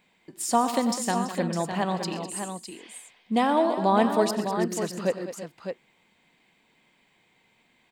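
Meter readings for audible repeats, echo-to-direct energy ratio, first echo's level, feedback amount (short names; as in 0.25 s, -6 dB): 5, -5.0 dB, -16.5 dB, no steady repeat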